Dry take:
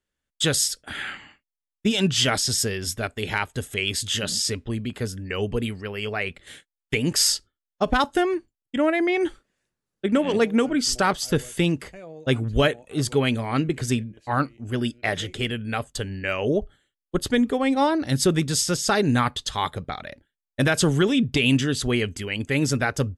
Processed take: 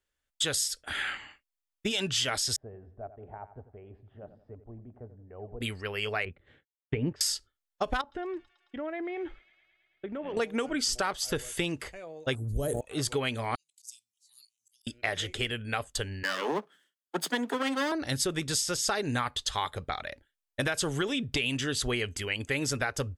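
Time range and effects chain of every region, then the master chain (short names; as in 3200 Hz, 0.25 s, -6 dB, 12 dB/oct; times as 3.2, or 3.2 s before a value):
2.56–5.61 ladder low-pass 740 Hz, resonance 70% + bell 550 Hz -8.5 dB 1.1 oct + feedback echo 89 ms, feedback 39%, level -13.5 dB
6.25–7.21 BPF 110–2900 Hz + tilt -4.5 dB/oct + upward expander, over -34 dBFS
8.01–10.37 compressor 4:1, threshold -27 dBFS + tape spacing loss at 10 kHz 39 dB + thin delay 0.109 s, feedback 78%, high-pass 3800 Hz, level -8 dB
12.35–12.81 EQ curve 130 Hz 0 dB, 570 Hz -8 dB, 2500 Hz -30 dB, 11000 Hz +9 dB + sustainer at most 24 dB/s
13.55–14.87 inverse Chebyshev high-pass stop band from 1600 Hz, stop band 60 dB + auto swell 0.248 s
16.23–17.92 minimum comb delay 0.62 ms + steep high-pass 160 Hz 96 dB/oct
whole clip: bell 190 Hz -10 dB 1.7 oct; compressor, threshold -26 dBFS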